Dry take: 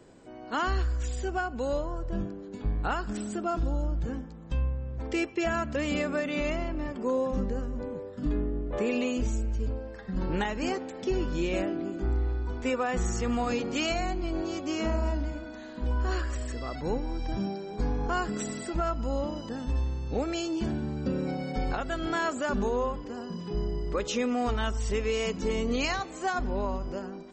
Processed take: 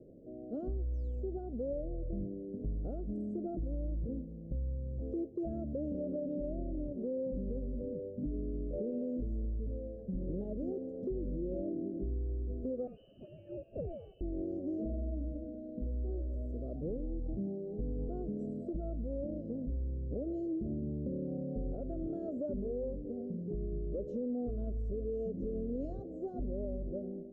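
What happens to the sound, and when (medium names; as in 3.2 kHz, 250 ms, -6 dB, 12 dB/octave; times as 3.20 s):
0.93–1.24 s: painted sound fall 1.9–6.7 kHz -38 dBFS
12.87–14.21 s: frequency inversion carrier 3 kHz
whole clip: elliptic low-pass 600 Hz, stop band 40 dB; peak limiter -25 dBFS; compression 2:1, threshold -37 dBFS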